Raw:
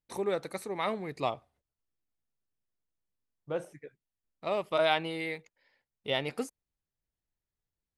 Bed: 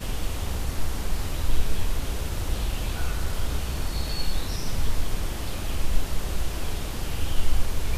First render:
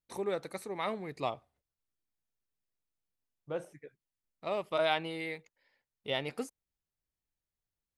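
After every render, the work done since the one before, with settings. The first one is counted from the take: trim -3 dB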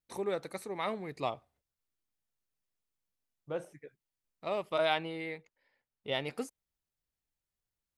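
5.04–6.12 s: treble shelf 3.9 kHz -9.5 dB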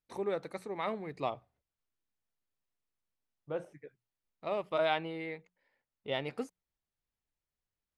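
low-pass 2.9 kHz 6 dB/octave; hum notches 60/120/180 Hz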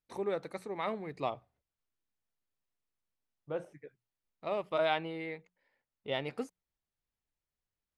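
no audible change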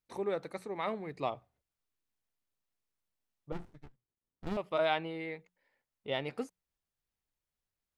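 3.52–4.57 s: sliding maximum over 65 samples

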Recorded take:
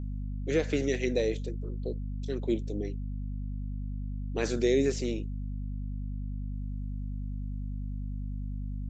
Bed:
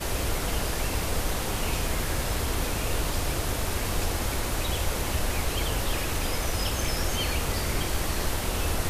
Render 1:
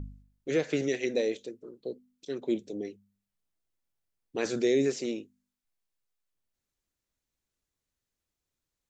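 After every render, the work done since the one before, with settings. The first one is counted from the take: de-hum 50 Hz, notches 5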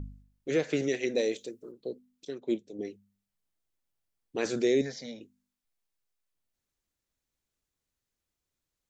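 1.18–1.72 s: treble shelf 5.5 kHz +9.5 dB; 2.30–2.79 s: upward expansion, over -43 dBFS; 4.81–5.21 s: static phaser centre 1.8 kHz, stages 8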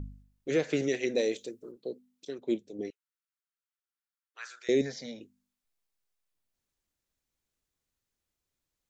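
1.76–2.39 s: high-pass 140 Hz 6 dB/octave; 2.90–4.69 s: ladder high-pass 1.2 kHz, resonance 60%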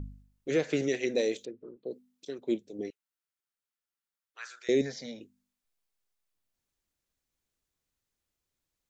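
1.45–1.91 s: distance through air 420 m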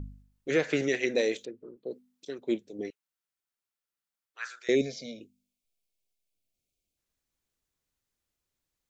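4.75–6.97 s: time-frequency box 750–2100 Hz -20 dB; dynamic bell 1.6 kHz, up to +7 dB, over -48 dBFS, Q 0.71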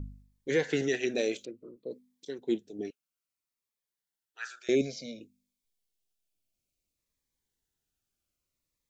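Shepard-style phaser falling 0.58 Hz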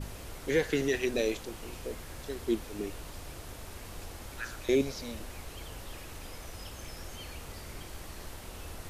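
add bed -16 dB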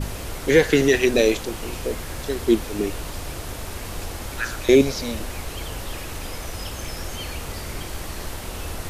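trim +12 dB

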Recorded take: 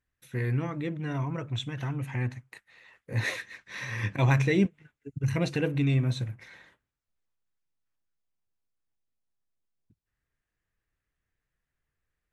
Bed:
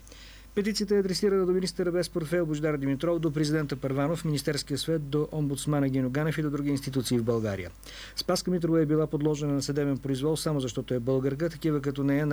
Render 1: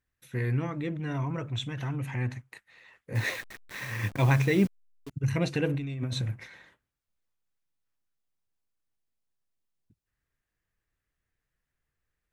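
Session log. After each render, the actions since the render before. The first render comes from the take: 0.78–2.42 s: transient shaper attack -2 dB, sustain +3 dB; 3.15–5.11 s: send-on-delta sampling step -39.5 dBFS; 5.66–6.47 s: compressor with a negative ratio -31 dBFS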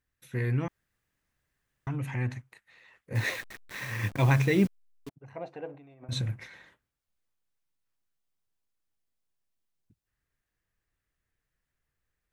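0.68–1.87 s: room tone; 2.46–3.11 s: compression 2:1, threshold -55 dBFS; 5.09–6.09 s: band-pass filter 730 Hz, Q 3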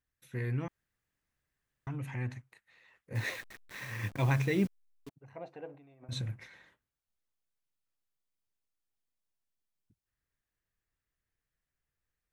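trim -5.5 dB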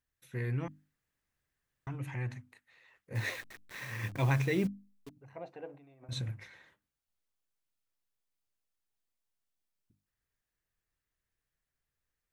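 hum notches 50/100/150/200/250/300 Hz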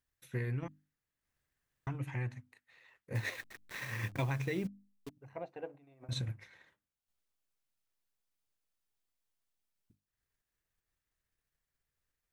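compression 4:1, threshold -33 dBFS, peak gain reduction 7.5 dB; transient shaper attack +3 dB, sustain -6 dB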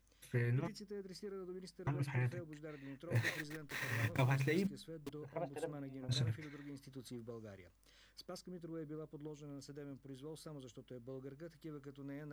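add bed -23 dB

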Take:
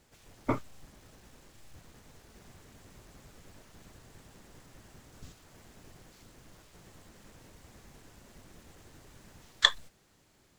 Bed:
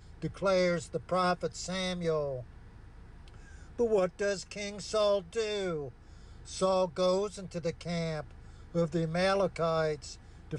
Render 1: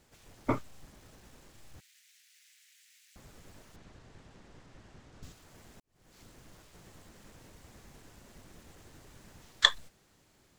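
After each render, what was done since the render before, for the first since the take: 1.80–3.16 s: steep high-pass 1.9 kHz; 3.76–5.23 s: distance through air 90 m; 5.80–6.20 s: fade in quadratic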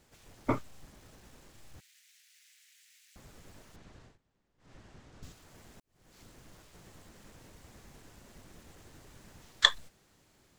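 4.04–4.72 s: dip -22.5 dB, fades 0.14 s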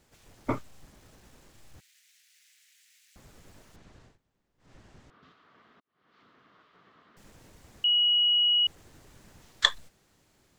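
5.10–7.17 s: cabinet simulation 280–3400 Hz, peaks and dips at 340 Hz -5 dB, 550 Hz -7 dB, 820 Hz -6 dB, 1.2 kHz +9 dB, 2.5 kHz -5 dB; 7.84–8.67 s: bleep 2.91 kHz -20 dBFS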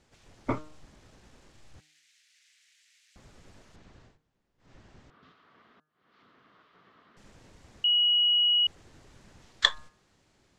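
low-pass 7 kHz 12 dB/octave; de-hum 153.4 Hz, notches 11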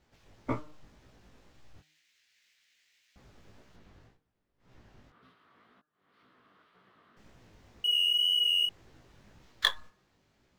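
median filter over 5 samples; chorus 1.9 Hz, delay 15.5 ms, depth 5.4 ms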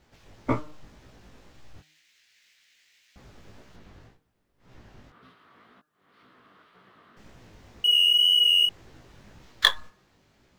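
trim +7 dB

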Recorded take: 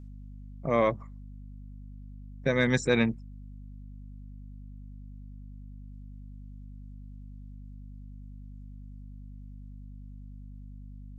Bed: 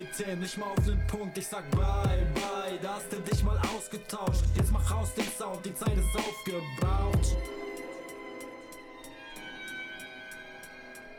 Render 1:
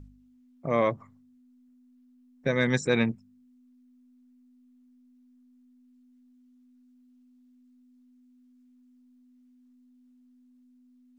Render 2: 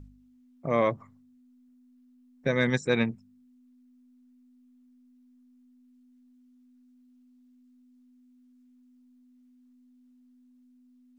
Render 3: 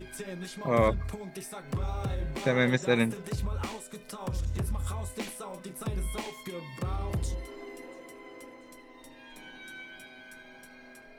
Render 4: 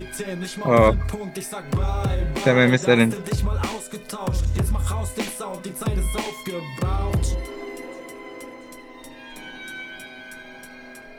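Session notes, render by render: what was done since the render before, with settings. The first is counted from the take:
de-hum 50 Hz, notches 4
2.70–3.12 s: upward expansion, over -33 dBFS
add bed -5 dB
trim +9.5 dB; peak limiter -3 dBFS, peak gain reduction 2 dB

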